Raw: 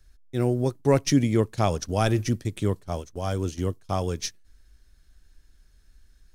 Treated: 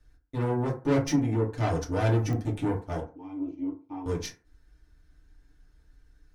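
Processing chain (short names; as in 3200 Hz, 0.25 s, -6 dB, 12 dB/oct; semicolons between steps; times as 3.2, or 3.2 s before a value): high shelf 3000 Hz -9 dB; 1.02–1.54 compressor 10:1, threshold -23 dBFS, peak gain reduction 9.5 dB; 3–4.06 vowel filter u; tube stage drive 26 dB, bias 0.55; FDN reverb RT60 0.36 s, low-frequency decay 0.9×, high-frequency decay 0.45×, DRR -5 dB; pops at 2.33, -22 dBFS; gain -2.5 dB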